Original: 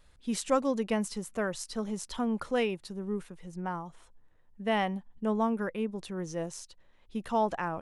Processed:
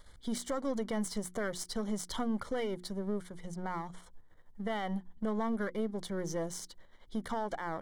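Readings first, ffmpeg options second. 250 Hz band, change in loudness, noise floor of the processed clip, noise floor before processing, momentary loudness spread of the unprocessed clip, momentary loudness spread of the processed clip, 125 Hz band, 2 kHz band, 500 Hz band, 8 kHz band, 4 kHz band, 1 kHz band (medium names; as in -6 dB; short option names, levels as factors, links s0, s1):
-3.5 dB, -4.5 dB, -57 dBFS, -61 dBFS, 11 LU, 7 LU, -2.5 dB, -4.5 dB, -5.0 dB, -1.5 dB, -2.5 dB, -6.0 dB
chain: -filter_complex "[0:a]aeval=exprs='if(lt(val(0),0),0.447*val(0),val(0))':c=same,bandreject=f=60:t=h:w=6,bandreject=f=120:t=h:w=6,bandreject=f=180:t=h:w=6,bandreject=f=240:t=h:w=6,bandreject=f=300:t=h:w=6,bandreject=f=360:t=h:w=6,asplit=2[s0][s1];[s1]acompressor=threshold=0.00562:ratio=6,volume=1[s2];[s0][s2]amix=inputs=2:normalize=0,alimiter=level_in=1.33:limit=0.0631:level=0:latency=1:release=87,volume=0.75,asuperstop=centerf=2600:order=12:qfactor=4.4,volume=1.12"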